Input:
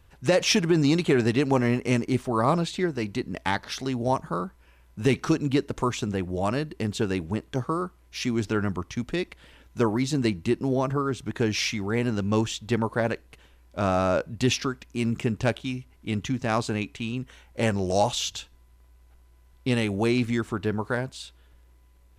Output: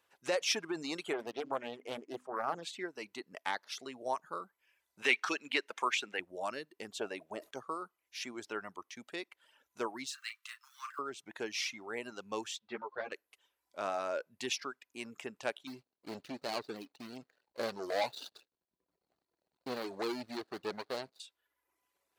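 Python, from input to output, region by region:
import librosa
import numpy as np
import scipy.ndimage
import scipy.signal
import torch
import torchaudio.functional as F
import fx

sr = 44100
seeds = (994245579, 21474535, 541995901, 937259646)

y = fx.chain(x, sr, fx.high_shelf(hz=2300.0, db=-11.0),
    fx.hum_notches(base_hz=50, count=6),
    fx.doppler_dist(depth_ms=0.58), at=(1.13, 2.63))
y = fx.chain(y, sr, fx.highpass(hz=220.0, slope=12),
    fx.peak_eq(hz=2300.0, db=14.0, octaves=1.6),
    fx.notch(hz=660.0, q=19.0), at=(5.02, 6.2))
y = fx.chain(y, sr, fx.peak_eq(hz=630.0, db=13.0, octaves=0.43),
    fx.sustainer(db_per_s=150.0), at=(6.91, 7.51))
y = fx.chain(y, sr, fx.law_mismatch(coded='mu'),
    fx.steep_highpass(hz=1100.0, slope=72),
    fx.doubler(ms=36.0, db=-6.0), at=(10.06, 10.99))
y = fx.chain(y, sr, fx.lowpass(hz=4800.0, slope=24),
    fx.ensemble(), at=(12.59, 13.12))
y = fx.chain(y, sr, fx.median_filter(points=41),
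    fx.leveller(passes=2),
    fx.peak_eq(hz=4300.0, db=13.5, octaves=0.31), at=(15.67, 21.2))
y = scipy.signal.sosfilt(scipy.signal.butter(2, 490.0, 'highpass', fs=sr, output='sos'), y)
y = fx.dereverb_blind(y, sr, rt60_s=0.8)
y = y * librosa.db_to_amplitude(-8.5)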